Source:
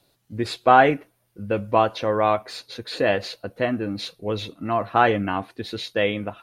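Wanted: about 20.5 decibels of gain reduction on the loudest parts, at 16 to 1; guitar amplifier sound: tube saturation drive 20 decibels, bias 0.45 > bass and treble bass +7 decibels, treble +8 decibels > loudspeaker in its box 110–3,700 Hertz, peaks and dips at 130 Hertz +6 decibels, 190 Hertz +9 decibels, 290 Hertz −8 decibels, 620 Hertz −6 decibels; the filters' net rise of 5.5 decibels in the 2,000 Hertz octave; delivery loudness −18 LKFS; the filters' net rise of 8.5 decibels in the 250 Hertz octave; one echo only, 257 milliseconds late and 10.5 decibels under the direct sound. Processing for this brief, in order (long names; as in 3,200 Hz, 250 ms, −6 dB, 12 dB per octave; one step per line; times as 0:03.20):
parametric band 250 Hz +4 dB
parametric band 2,000 Hz +7 dB
downward compressor 16 to 1, threshold −28 dBFS
single-tap delay 257 ms −10.5 dB
tube saturation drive 20 dB, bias 0.45
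bass and treble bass +7 dB, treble +8 dB
loudspeaker in its box 110–3,700 Hz, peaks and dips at 130 Hz +6 dB, 190 Hz +9 dB, 290 Hz −8 dB, 620 Hz −6 dB
level +14.5 dB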